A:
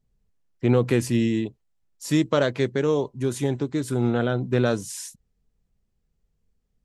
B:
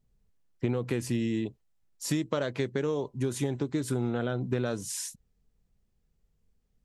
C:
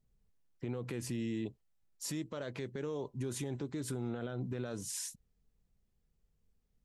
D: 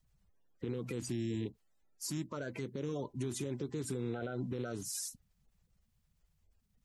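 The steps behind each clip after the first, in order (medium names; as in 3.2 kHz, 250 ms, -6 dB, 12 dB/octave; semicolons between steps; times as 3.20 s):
compression 10:1, threshold -25 dBFS, peak gain reduction 11.5 dB
peak limiter -25.5 dBFS, peak gain reduction 10.5 dB; trim -4 dB
coarse spectral quantiser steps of 30 dB; trim +1 dB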